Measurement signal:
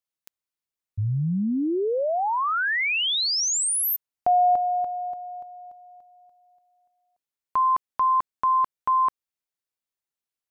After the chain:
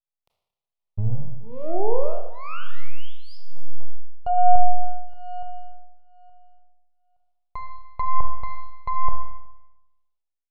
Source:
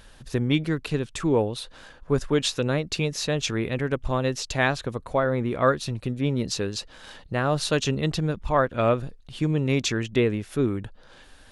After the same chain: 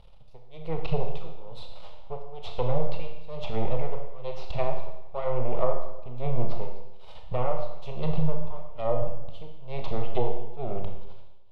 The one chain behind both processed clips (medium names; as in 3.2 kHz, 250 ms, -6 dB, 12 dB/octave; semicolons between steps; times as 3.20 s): half-wave rectifier; treble shelf 5.7 kHz +10 dB; level rider gain up to 8 dB; tremolo 1.1 Hz, depth 99%; static phaser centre 680 Hz, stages 4; low-pass that closes with the level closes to 840 Hz, closed at -19.5 dBFS; distance through air 400 m; Schroeder reverb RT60 0.93 s, combs from 25 ms, DRR 3 dB; trim +1.5 dB